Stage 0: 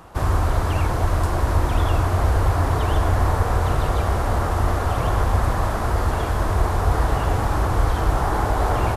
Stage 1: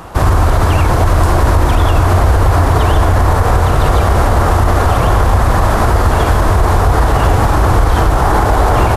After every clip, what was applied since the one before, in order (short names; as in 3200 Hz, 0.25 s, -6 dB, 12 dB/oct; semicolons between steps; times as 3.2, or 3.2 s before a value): maximiser +14 dB; gain -1 dB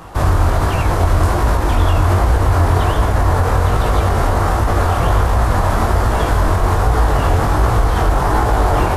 chorus 1.3 Hz, delay 18 ms, depth 5.4 ms; gain -1 dB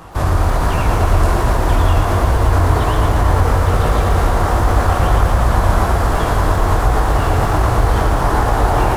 lo-fi delay 0.115 s, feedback 80%, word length 7-bit, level -7 dB; gain -1.5 dB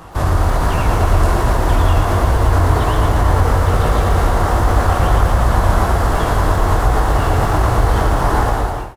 ending faded out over 0.52 s; notch 2400 Hz, Q 28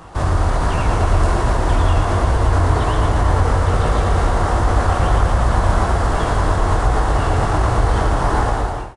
downsampling 22050 Hz; gain -2 dB